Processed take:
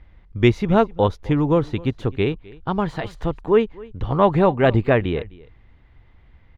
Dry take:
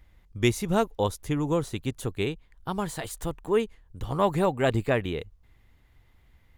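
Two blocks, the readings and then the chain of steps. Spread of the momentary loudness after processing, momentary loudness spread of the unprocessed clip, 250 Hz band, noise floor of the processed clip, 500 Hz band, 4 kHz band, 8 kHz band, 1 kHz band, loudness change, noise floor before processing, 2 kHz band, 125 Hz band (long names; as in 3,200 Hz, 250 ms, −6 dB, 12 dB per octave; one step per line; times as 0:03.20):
12 LU, 12 LU, +8.0 dB, −52 dBFS, +8.0 dB, +2.5 dB, below −10 dB, +7.5 dB, +7.5 dB, −61 dBFS, +6.0 dB, +8.5 dB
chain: high-frequency loss of the air 270 metres
on a send: single-tap delay 258 ms −22 dB
on the sum: level +8.5 dB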